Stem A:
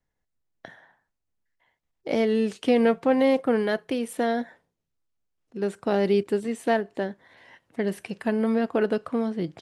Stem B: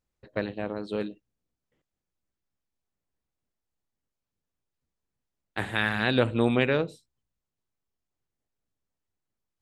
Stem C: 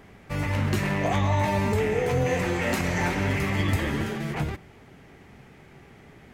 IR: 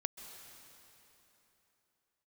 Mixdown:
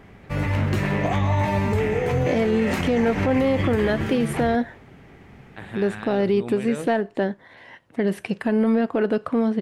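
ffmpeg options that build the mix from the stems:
-filter_complex "[0:a]acontrast=66,adelay=200,volume=0.5dB[link_01];[1:a]alimiter=limit=-18.5dB:level=0:latency=1:release=103,volume=-3dB[link_02];[2:a]volume=2dB[link_03];[link_01][link_02][link_03]amix=inputs=3:normalize=0,bass=frequency=250:gain=2,treble=frequency=4000:gain=-6,alimiter=limit=-12.5dB:level=0:latency=1:release=88"

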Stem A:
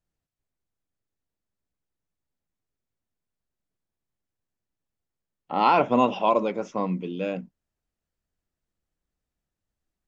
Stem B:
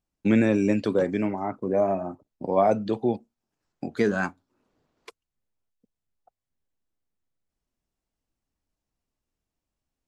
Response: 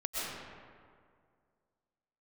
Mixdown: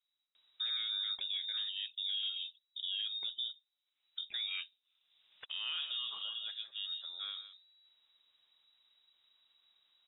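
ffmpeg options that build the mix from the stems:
-filter_complex "[0:a]alimiter=limit=-17dB:level=0:latency=1:release=11,volume=-3.5dB,afade=type=out:start_time=6:duration=0.32:silence=0.298538,asplit=2[link_01][link_02];[link_02]volume=-12dB[link_03];[1:a]acompressor=mode=upward:threshold=-48dB:ratio=2.5,alimiter=limit=-20.5dB:level=0:latency=1:release=89,adelay=350,volume=-6dB[link_04];[link_03]aecho=0:1:160:1[link_05];[link_01][link_04][link_05]amix=inputs=3:normalize=0,lowpass=frequency=3300:width_type=q:width=0.5098,lowpass=frequency=3300:width_type=q:width=0.6013,lowpass=frequency=3300:width_type=q:width=0.9,lowpass=frequency=3300:width_type=q:width=2.563,afreqshift=-3900,alimiter=level_in=5.5dB:limit=-24dB:level=0:latency=1:release=486,volume=-5.5dB"

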